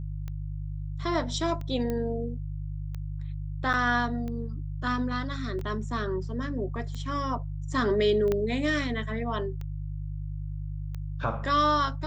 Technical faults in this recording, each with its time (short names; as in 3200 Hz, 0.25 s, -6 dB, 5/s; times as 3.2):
hum 50 Hz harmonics 3 -34 dBFS
tick 45 rpm -25 dBFS
1.9 pop -19 dBFS
3.73–3.74 gap 6.7 ms
5.59 gap 2.4 ms
8.32 pop -15 dBFS